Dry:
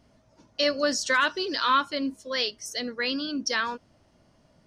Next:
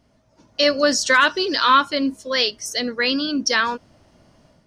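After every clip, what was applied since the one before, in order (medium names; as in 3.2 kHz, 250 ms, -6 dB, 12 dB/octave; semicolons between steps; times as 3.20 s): level rider gain up to 8 dB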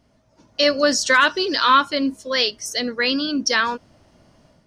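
no audible change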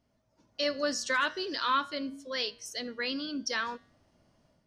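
flange 0.45 Hz, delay 8.9 ms, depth 1.9 ms, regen -90%; trim -8.5 dB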